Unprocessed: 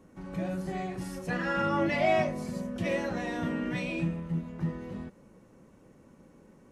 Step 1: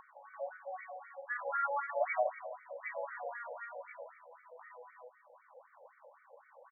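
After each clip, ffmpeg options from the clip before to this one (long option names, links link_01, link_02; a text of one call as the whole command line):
ffmpeg -i in.wav -filter_complex "[0:a]asplit=2[link_01][link_02];[link_02]adelay=166,lowpass=frequency=2600:poles=1,volume=-11dB,asplit=2[link_03][link_04];[link_04]adelay=166,lowpass=frequency=2600:poles=1,volume=0.53,asplit=2[link_05][link_06];[link_06]adelay=166,lowpass=frequency=2600:poles=1,volume=0.53,asplit=2[link_07][link_08];[link_08]adelay=166,lowpass=frequency=2600:poles=1,volume=0.53,asplit=2[link_09][link_10];[link_10]adelay=166,lowpass=frequency=2600:poles=1,volume=0.53,asplit=2[link_11][link_12];[link_12]adelay=166,lowpass=frequency=2600:poles=1,volume=0.53[link_13];[link_01][link_03][link_05][link_07][link_09][link_11][link_13]amix=inputs=7:normalize=0,acompressor=mode=upward:threshold=-35dB:ratio=2.5,afftfilt=real='re*between(b*sr/1024,630*pow(1700/630,0.5+0.5*sin(2*PI*3.9*pts/sr))/1.41,630*pow(1700/630,0.5+0.5*sin(2*PI*3.9*pts/sr))*1.41)':imag='im*between(b*sr/1024,630*pow(1700/630,0.5+0.5*sin(2*PI*3.9*pts/sr))/1.41,630*pow(1700/630,0.5+0.5*sin(2*PI*3.9*pts/sr))*1.41)':win_size=1024:overlap=0.75,volume=-1dB" out.wav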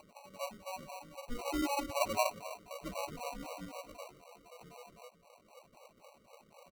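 ffmpeg -i in.wav -af "acrusher=samples=26:mix=1:aa=0.000001" out.wav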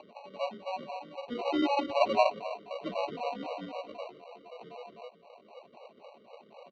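ffmpeg -i in.wav -filter_complex "[0:a]acrossover=split=240[link_01][link_02];[link_02]acontrast=50[link_03];[link_01][link_03]amix=inputs=2:normalize=0,highpass=150,equalizer=frequency=220:width_type=q:width=4:gain=5,equalizer=frequency=410:width_type=q:width=4:gain=7,equalizer=frequency=700:width_type=q:width=4:gain=4,equalizer=frequency=1300:width_type=q:width=4:gain=-7,equalizer=frequency=2300:width_type=q:width=4:gain=-4,equalizer=frequency=3400:width_type=q:width=4:gain=6,lowpass=frequency=3800:width=0.5412,lowpass=frequency=3800:width=1.3066" out.wav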